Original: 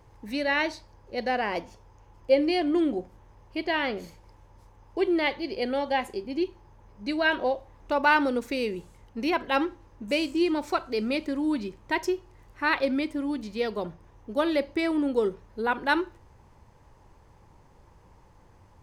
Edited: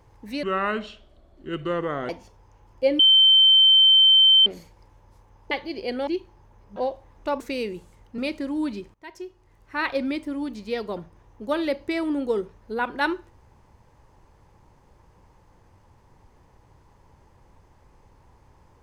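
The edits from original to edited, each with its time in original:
0.43–1.56 speed 68%
2.46–3.93 bleep 3100 Hz -11.5 dBFS
4.98–5.25 cut
5.81–6.35 cut
7.04–7.4 cut
8.04–8.42 cut
9.2–11.06 cut
11.82–12.88 fade in, from -23.5 dB

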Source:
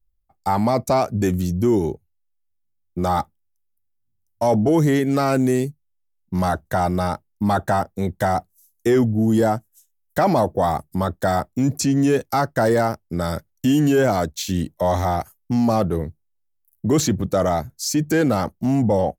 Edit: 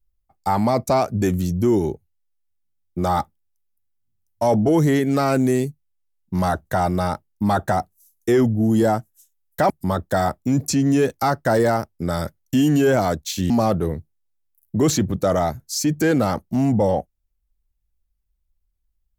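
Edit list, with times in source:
7.72–8.3 cut
10.28–10.81 cut
14.61–15.6 cut

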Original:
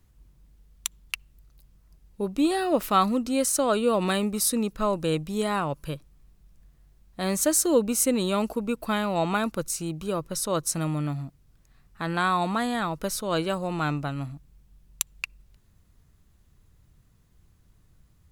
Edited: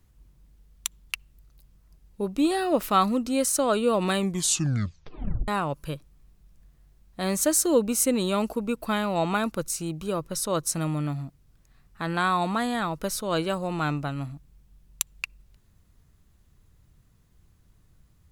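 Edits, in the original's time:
4.17 tape stop 1.31 s

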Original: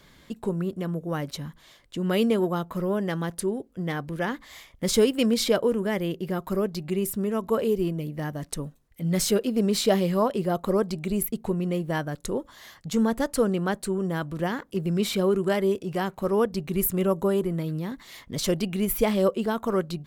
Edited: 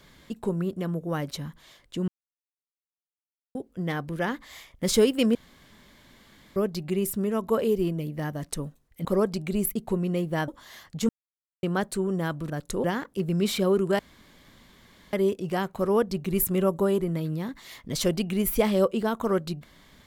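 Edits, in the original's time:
2.08–3.55 mute
5.35–6.56 room tone
9.05–10.62 cut
12.05–12.39 move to 14.41
13–13.54 mute
15.56 insert room tone 1.14 s

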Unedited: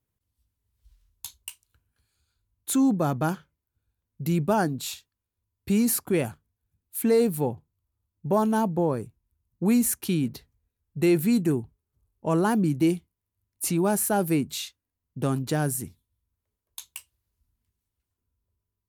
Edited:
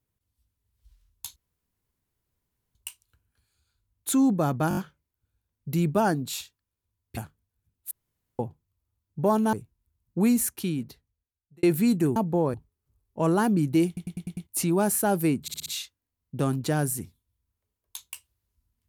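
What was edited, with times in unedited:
1.36 insert room tone 1.39 s
3.3 stutter 0.02 s, 5 plays
5.7–6.24 cut
6.98–7.46 room tone
8.6–8.98 move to 11.61
9.67–11.08 fade out
12.94 stutter in place 0.10 s, 6 plays
14.49 stutter 0.06 s, 5 plays

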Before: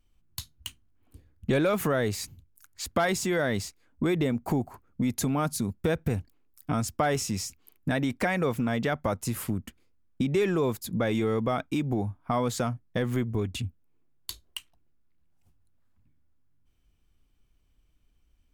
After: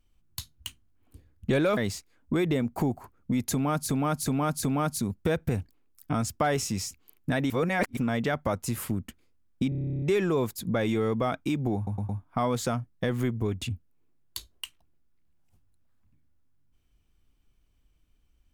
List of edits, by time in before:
1.77–3.47 cut
5.22–5.59 loop, 4 plays
8.09–8.56 reverse
10.28 stutter 0.03 s, 12 plays
12.02 stutter 0.11 s, 4 plays

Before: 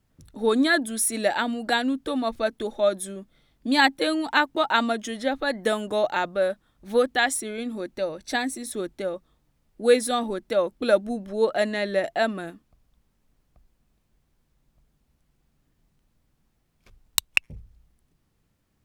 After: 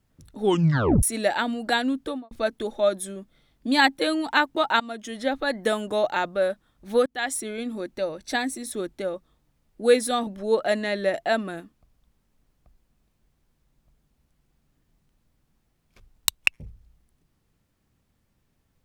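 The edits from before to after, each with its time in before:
0.41 tape stop 0.62 s
2.02–2.31 studio fade out
4.8–5.26 fade in, from -17.5 dB
7.06–7.42 fade in linear, from -23.5 dB
10.27–11.17 cut

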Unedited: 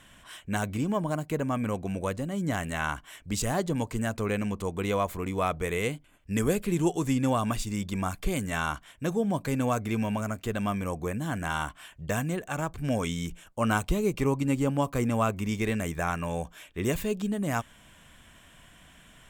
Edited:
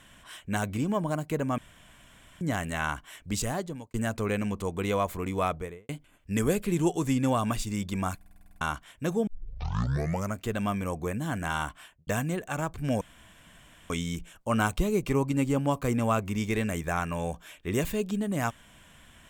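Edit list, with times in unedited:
1.58–2.41 room tone
3.36–3.94 fade out
5.43–5.89 studio fade out
8.16 stutter in place 0.05 s, 9 plays
9.27 tape start 1.06 s
11.78–12.07 studio fade out
13.01 insert room tone 0.89 s

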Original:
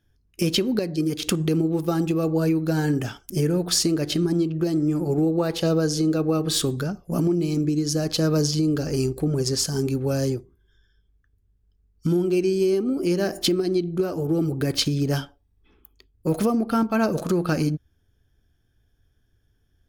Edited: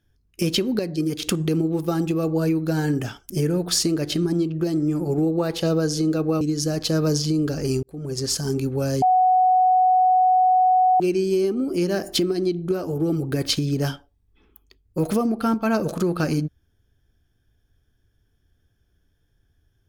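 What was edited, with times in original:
6.41–7.7 cut
9.12–9.62 fade in
10.31–12.29 bleep 741 Hz -13.5 dBFS

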